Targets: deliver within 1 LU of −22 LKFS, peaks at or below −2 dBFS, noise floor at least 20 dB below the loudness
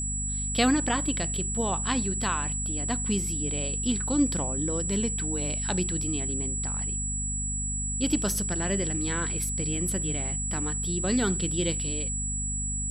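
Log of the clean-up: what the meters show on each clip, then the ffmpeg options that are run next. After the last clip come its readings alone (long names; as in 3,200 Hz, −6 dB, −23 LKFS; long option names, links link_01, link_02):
mains hum 50 Hz; hum harmonics up to 250 Hz; level of the hum −31 dBFS; interfering tone 7,800 Hz; level of the tone −30 dBFS; integrated loudness −27.0 LKFS; sample peak −10.5 dBFS; target loudness −22.0 LKFS
→ -af "bandreject=frequency=50:width_type=h:width=4,bandreject=frequency=100:width_type=h:width=4,bandreject=frequency=150:width_type=h:width=4,bandreject=frequency=200:width_type=h:width=4,bandreject=frequency=250:width_type=h:width=4"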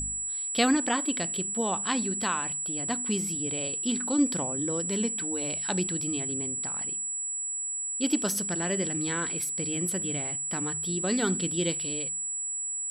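mains hum none found; interfering tone 7,800 Hz; level of the tone −30 dBFS
→ -af "bandreject=frequency=7800:width=30"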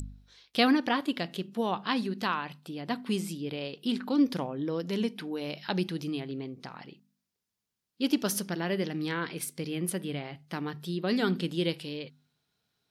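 interfering tone none found; integrated loudness −31.5 LKFS; sample peak −12.0 dBFS; target loudness −22.0 LKFS
→ -af "volume=9.5dB"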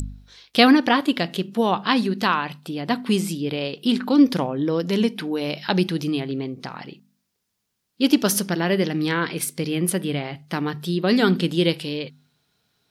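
integrated loudness −22.0 LKFS; sample peak −2.5 dBFS; background noise floor −77 dBFS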